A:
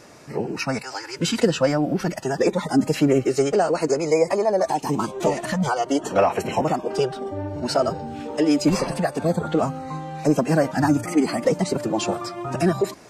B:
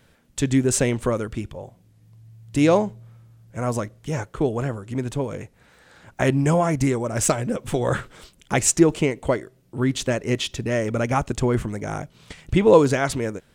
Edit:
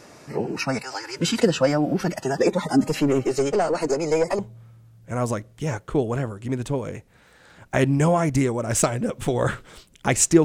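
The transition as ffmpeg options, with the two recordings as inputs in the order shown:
-filter_complex "[0:a]asettb=1/sr,asplit=3[a][b][c];[a]atrim=end=2.814[d];[b]atrim=start=2.81:end=4.39,asetpts=PTS-STARTPTS,afade=t=in:d=0.004:c=qsin,afade=t=out:st=1.576:d=0.004:c=qsin,aeval=exprs='(tanh(4.47*val(0)+0.3)-tanh(0.3))/4.47':c=same[e];[c]atrim=start=4.386[f];[d][e]acrossfade=d=0.004:c1=hsin:c2=qsin[g];[g][f]acrossfade=d=0.004:c1=qsin:c2=hsin,apad=whole_dur=10.44,atrim=end=10.44,atrim=end=4.392[h];[1:a]atrim=start=2.848:end=8.9[i];[h][i]acrossfade=d=0.004:c1=hsin:c2=hsin"

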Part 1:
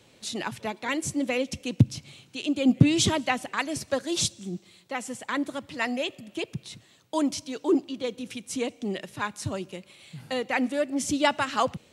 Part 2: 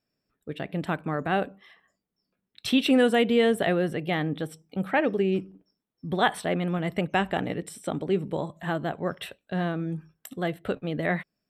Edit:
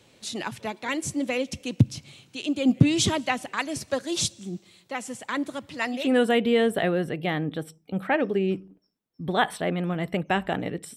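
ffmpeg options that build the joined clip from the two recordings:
-filter_complex "[0:a]apad=whole_dur=10.96,atrim=end=10.96,atrim=end=6.17,asetpts=PTS-STARTPTS[a];[1:a]atrim=start=2.75:end=7.8,asetpts=PTS-STARTPTS[b];[a][b]acrossfade=d=0.26:c1=tri:c2=tri"

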